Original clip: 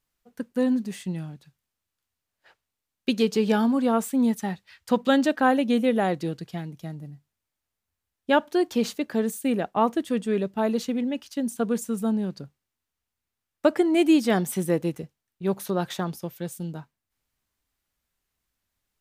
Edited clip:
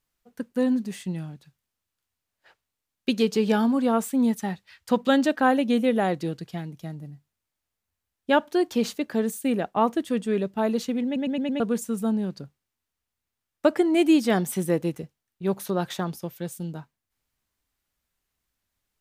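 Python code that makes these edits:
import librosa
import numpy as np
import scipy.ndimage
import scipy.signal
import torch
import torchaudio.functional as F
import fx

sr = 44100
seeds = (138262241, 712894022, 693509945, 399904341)

y = fx.edit(x, sr, fx.stutter_over(start_s=11.05, slice_s=0.11, count=5), tone=tone)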